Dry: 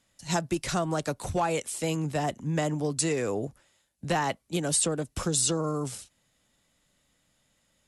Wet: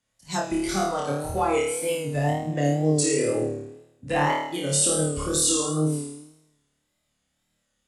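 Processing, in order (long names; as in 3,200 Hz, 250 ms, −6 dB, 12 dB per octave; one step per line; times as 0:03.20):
flutter between parallel walls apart 4.6 metres, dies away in 1.1 s
noise reduction from a noise print of the clip's start 10 dB
tape wow and flutter 72 cents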